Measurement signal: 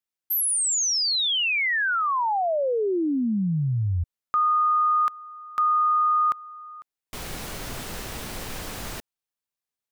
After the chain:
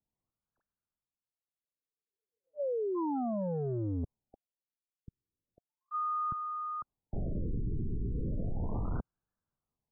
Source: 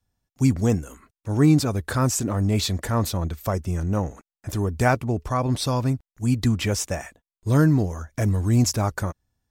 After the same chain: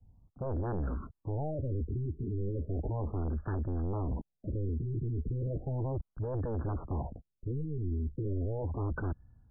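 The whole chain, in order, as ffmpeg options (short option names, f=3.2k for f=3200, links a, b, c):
-filter_complex "[0:a]acrossover=split=150|1900[a][b][c];[a]acompressor=threshold=-30dB:ratio=6:release=102:knee=2.83:detection=peak[d];[d][b][c]amix=inputs=3:normalize=0,bass=f=250:g=13,treble=f=4k:g=-10,areverse,acompressor=threshold=-28dB:ratio=5:attack=0.44:release=43:knee=6:detection=rms,areverse,aeval=exprs='0.0891*sin(PI/2*2.82*val(0)/0.0891)':c=same,afftfilt=real='re*lt(b*sr/1024,430*pow(1800/430,0.5+0.5*sin(2*PI*0.35*pts/sr)))':imag='im*lt(b*sr/1024,430*pow(1800/430,0.5+0.5*sin(2*PI*0.35*pts/sr)))':win_size=1024:overlap=0.75,volume=-8.5dB"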